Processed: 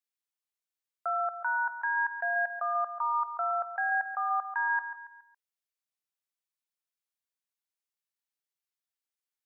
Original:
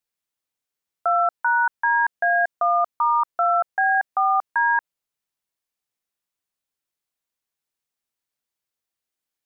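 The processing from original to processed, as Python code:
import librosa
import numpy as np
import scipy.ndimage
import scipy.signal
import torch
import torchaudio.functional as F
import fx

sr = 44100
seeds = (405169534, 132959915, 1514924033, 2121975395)

p1 = fx.highpass(x, sr, hz=910.0, slope=6)
p2 = p1 + fx.echo_feedback(p1, sr, ms=139, feedback_pct=43, wet_db=-11.5, dry=0)
y = p2 * 10.0 ** (-8.0 / 20.0)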